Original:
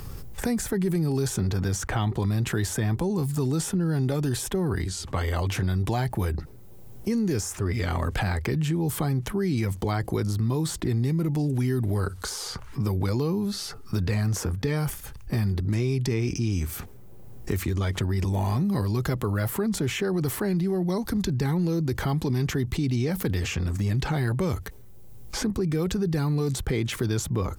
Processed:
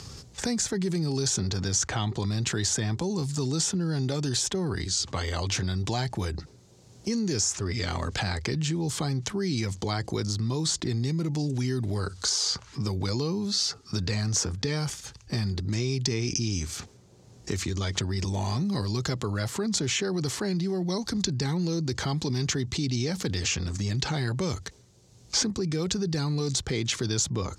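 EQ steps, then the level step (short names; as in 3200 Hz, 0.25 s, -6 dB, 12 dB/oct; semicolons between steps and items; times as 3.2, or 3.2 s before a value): HPF 73 Hz; synth low-pass 6800 Hz, resonance Q 2.5; bell 4400 Hz +8 dB 1.1 oct; -3.0 dB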